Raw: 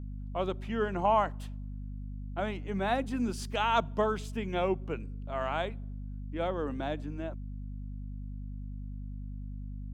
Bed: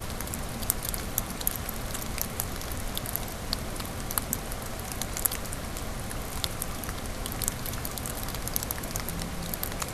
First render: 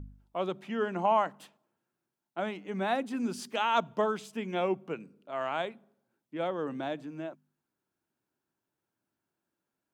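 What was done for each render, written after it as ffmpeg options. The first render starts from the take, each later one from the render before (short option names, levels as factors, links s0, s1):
-af "bandreject=f=50:t=h:w=4,bandreject=f=100:t=h:w=4,bandreject=f=150:t=h:w=4,bandreject=f=200:t=h:w=4,bandreject=f=250:t=h:w=4"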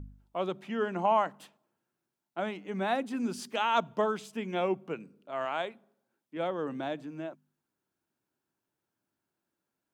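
-filter_complex "[0:a]asettb=1/sr,asplit=3[s0][s1][s2];[s0]atrim=end=5.454[s3];[s1]atrim=start=5.45:end=6.37,asetpts=PTS-STARTPTS,afade=t=in:d=0.004:c=qsin,afade=t=out:st=0.916:d=0.004:c=qsin,lowshelf=f=140:g=-12[s4];[s2]atrim=start=6.366[s5];[s3][s4]acrossfade=d=0.004:c1=hsin:c2=qsin[s6];[s6][s5]acrossfade=d=0.004:c1=qsin:c2=hsin"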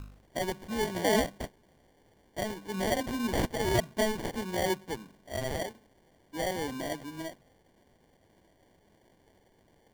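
-af "aexciter=amount=9.9:drive=9.3:freq=8400,acrusher=samples=34:mix=1:aa=0.000001"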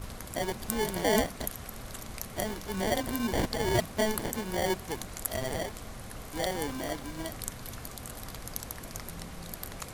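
-filter_complex "[1:a]volume=0.398[s0];[0:a][s0]amix=inputs=2:normalize=0"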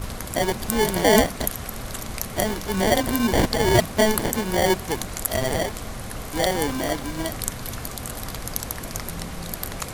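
-af "volume=2.99,alimiter=limit=0.708:level=0:latency=1"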